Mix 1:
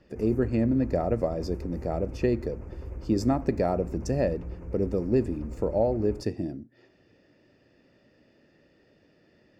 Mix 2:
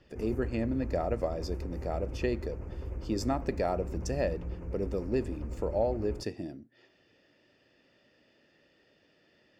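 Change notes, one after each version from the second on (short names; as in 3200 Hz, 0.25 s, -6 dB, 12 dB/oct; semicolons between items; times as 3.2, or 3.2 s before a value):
speech: add low shelf 490 Hz -9.5 dB; master: add bell 3200 Hz +7 dB 0.29 oct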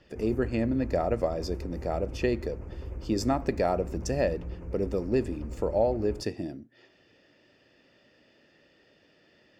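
speech +4.0 dB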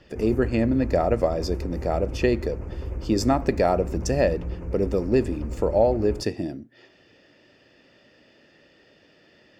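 speech +5.5 dB; background +6.5 dB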